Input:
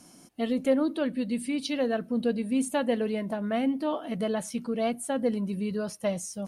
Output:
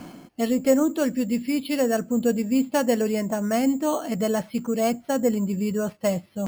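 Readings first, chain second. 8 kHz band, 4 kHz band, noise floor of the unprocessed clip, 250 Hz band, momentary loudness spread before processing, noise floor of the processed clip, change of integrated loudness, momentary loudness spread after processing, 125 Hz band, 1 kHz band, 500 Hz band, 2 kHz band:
+5.0 dB, +2.5 dB, −53 dBFS, +5.0 dB, 5 LU, −54 dBFS, +5.0 dB, 6 LU, +5.5 dB, +5.0 dB, +5.0 dB, +4.0 dB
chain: reversed playback
upward compression, threshold −28 dBFS
reversed playback
bad sample-rate conversion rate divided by 6×, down filtered, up hold
level +5 dB

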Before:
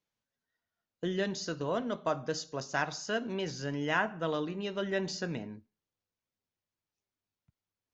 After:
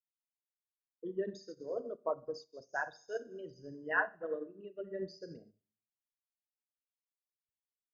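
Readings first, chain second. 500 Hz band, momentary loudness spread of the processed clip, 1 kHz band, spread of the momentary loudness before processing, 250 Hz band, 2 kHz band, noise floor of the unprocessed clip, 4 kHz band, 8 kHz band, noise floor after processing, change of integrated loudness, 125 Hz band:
−5.0 dB, 14 LU, −6.5 dB, 6 LU, −11.5 dB, −2.5 dB, below −85 dBFS, −18.0 dB, can't be measured, below −85 dBFS, −5.5 dB, −16.5 dB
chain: spectral envelope exaggerated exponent 3
four-comb reverb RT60 0.71 s, combs from 32 ms, DRR 7 dB
expander for the loud parts 2.5 to 1, over −50 dBFS

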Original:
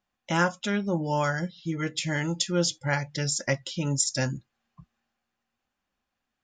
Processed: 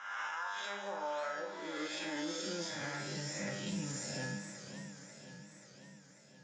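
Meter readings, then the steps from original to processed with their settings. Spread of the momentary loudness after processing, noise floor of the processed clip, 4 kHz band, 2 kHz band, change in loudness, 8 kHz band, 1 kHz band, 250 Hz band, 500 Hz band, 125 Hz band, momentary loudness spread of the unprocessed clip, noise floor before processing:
17 LU, −59 dBFS, −10.0 dB, −9.5 dB, −12.0 dB, −13.0 dB, −9.5 dB, −12.5 dB, −11.0 dB, −16.5 dB, 6 LU, −84 dBFS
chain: peak hold with a rise ahead of every peak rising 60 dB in 1.05 s
in parallel at −2.5 dB: downward compressor, threshold −31 dBFS, peak gain reduction 13.5 dB
on the sum: high-pass filter sweep 1,200 Hz → 160 Hz, 0:00.14–0:03.23
tuned comb filter 100 Hz, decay 0.72 s, harmonics all, mix 90%
brickwall limiter −27.5 dBFS, peak gain reduction 10.5 dB
high-frequency loss of the air 52 metres
delay with a high-pass on its return 219 ms, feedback 64%, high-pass 4,700 Hz, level −9 dB
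feedback echo with a swinging delay time 537 ms, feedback 65%, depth 167 cents, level −11 dB
level −2.5 dB

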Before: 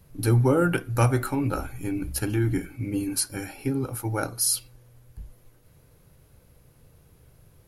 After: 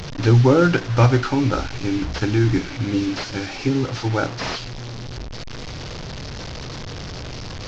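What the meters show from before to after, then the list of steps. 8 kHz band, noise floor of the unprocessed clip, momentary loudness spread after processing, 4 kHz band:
−8.0 dB, −58 dBFS, 17 LU, +7.5 dB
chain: linear delta modulator 32 kbit/s, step −32 dBFS
level +6.5 dB

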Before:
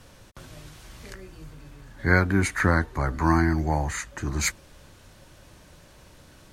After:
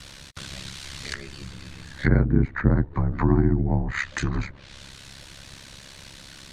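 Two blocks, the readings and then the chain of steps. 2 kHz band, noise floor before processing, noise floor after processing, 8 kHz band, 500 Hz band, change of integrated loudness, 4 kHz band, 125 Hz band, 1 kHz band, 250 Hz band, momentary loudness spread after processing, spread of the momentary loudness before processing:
−5.0 dB, −52 dBFS, −46 dBFS, −8.0 dB, −0.5 dB, −0.5 dB, +2.0 dB, +3.5 dB, −6.5 dB, +2.0 dB, 22 LU, 21 LU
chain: treble cut that deepens with the level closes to 460 Hz, closed at −21 dBFS
graphic EQ with 10 bands 125 Hz +3 dB, 500 Hz −3 dB, 2,000 Hz +6 dB, 4,000 Hz +11 dB, 8,000 Hz +6 dB
ring modulation 34 Hz
level +5.5 dB

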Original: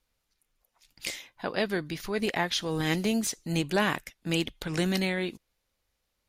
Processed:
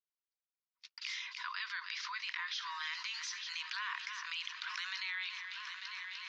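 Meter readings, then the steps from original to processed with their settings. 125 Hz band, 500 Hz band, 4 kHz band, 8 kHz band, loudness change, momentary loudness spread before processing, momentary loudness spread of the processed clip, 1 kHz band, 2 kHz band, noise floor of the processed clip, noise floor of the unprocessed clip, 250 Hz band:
below −40 dB, below −40 dB, −5.0 dB, −12.5 dB, −10.0 dB, 9 LU, 5 LU, −9.0 dB, −5.0 dB, below −85 dBFS, −80 dBFS, below −40 dB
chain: Chebyshev high-pass filter 950 Hz, order 10
on a send: echo machine with several playback heads 299 ms, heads first and third, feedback 59%, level −21.5 dB
on the sum: brickwall limiter −25.5 dBFS, peak gain reduction 10.5 dB
Butterworth low-pass 5,800 Hz 48 dB per octave
noise gate −59 dBFS, range −58 dB
envelope flattener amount 70%
level −5 dB

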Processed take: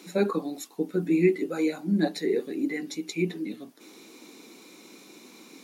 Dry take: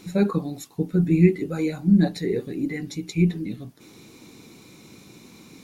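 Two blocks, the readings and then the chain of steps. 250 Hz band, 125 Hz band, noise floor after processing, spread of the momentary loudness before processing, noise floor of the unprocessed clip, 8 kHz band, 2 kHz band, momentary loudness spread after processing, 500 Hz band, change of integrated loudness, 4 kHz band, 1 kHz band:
−5.5 dB, −12.0 dB, −51 dBFS, 14 LU, −50 dBFS, 0.0 dB, 0.0 dB, 13 LU, 0.0 dB, −4.5 dB, 0.0 dB, 0.0 dB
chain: high-pass filter 250 Hz 24 dB per octave

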